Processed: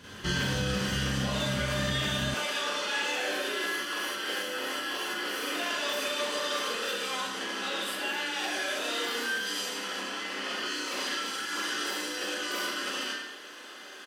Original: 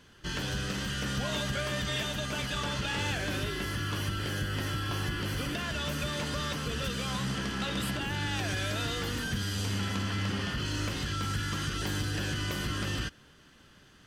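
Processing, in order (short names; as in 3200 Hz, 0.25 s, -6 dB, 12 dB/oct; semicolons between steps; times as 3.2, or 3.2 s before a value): Schroeder reverb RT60 0.5 s, combs from 30 ms, DRR -7.5 dB; compressor 10:1, threshold -32 dBFS, peak gain reduction 13 dB; HPF 45 Hz 24 dB/oct, from 2.34 s 340 Hz; speakerphone echo 0.11 s, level -7 dB; gain +5.5 dB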